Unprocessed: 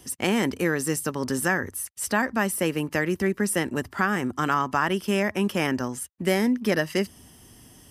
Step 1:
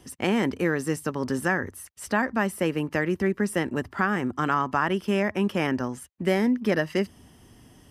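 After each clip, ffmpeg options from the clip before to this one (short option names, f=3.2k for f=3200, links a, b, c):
-af "highshelf=f=4.8k:g=-12"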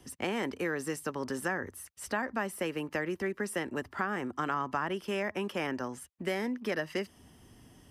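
-filter_complex "[0:a]acrossover=split=310|1100[a][b][c];[a]acompressor=threshold=-39dB:ratio=4[d];[b]acompressor=threshold=-28dB:ratio=4[e];[c]acompressor=threshold=-30dB:ratio=4[f];[d][e][f]amix=inputs=3:normalize=0,volume=-4dB"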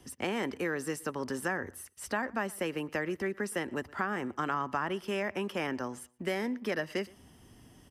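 -filter_complex "[0:a]asplit=2[a][b];[b]adelay=118,lowpass=f=4.5k:p=1,volume=-23.5dB,asplit=2[c][d];[d]adelay=118,lowpass=f=4.5k:p=1,volume=0.25[e];[a][c][e]amix=inputs=3:normalize=0"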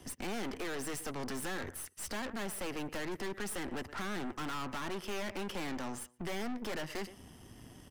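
-af "aeval=exprs='(tanh(158*val(0)+0.75)-tanh(0.75))/158':c=same,volume=7dB"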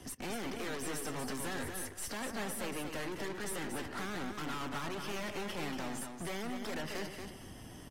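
-filter_complex "[0:a]asoftclip=type=tanh:threshold=-39.5dB,asplit=2[a][b];[b]aecho=0:1:233|466|699:0.473|0.0994|0.0209[c];[a][c]amix=inputs=2:normalize=0,volume=3dB" -ar 44100 -c:a aac -b:a 48k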